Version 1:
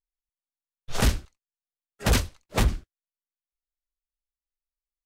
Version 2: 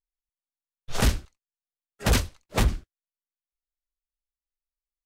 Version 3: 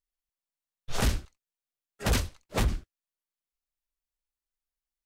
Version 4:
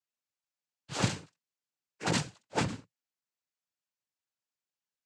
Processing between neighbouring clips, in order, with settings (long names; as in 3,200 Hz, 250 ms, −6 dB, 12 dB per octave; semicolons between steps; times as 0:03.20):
no processing that can be heard
brickwall limiter −18.5 dBFS, peak gain reduction 4.5 dB
cochlear-implant simulation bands 8